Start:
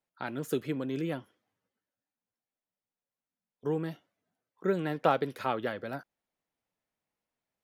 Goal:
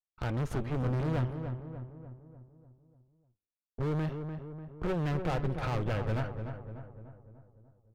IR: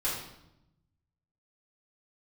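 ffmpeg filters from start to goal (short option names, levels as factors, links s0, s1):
-filter_complex "[0:a]aeval=exprs='if(lt(val(0),0),0.251*val(0),val(0))':c=same,highpass=f=49:p=1,aemphasis=mode=reproduction:type=riaa,agate=range=0.0224:threshold=0.00126:ratio=3:detection=peak,equalizer=f=240:w=0.81:g=-8,asplit=2[s0][s1];[s1]acompressor=threshold=0.00631:ratio=6,volume=1.41[s2];[s0][s2]amix=inputs=2:normalize=0,alimiter=limit=0.0794:level=0:latency=1:release=224,volume=53.1,asoftclip=hard,volume=0.0188,asplit=2[s3][s4];[s4]adelay=284,lowpass=f=1600:p=1,volume=0.447,asplit=2[s5][s6];[s6]adelay=284,lowpass=f=1600:p=1,volume=0.55,asplit=2[s7][s8];[s8]adelay=284,lowpass=f=1600:p=1,volume=0.55,asplit=2[s9][s10];[s10]adelay=284,lowpass=f=1600:p=1,volume=0.55,asplit=2[s11][s12];[s12]adelay=284,lowpass=f=1600:p=1,volume=0.55,asplit=2[s13][s14];[s14]adelay=284,lowpass=f=1600:p=1,volume=0.55,asplit=2[s15][s16];[s16]adelay=284,lowpass=f=1600:p=1,volume=0.55[s17];[s5][s7][s9][s11][s13][s15][s17]amix=inputs=7:normalize=0[s18];[s3][s18]amix=inputs=2:normalize=0,asetrate=42336,aresample=44100,volume=2"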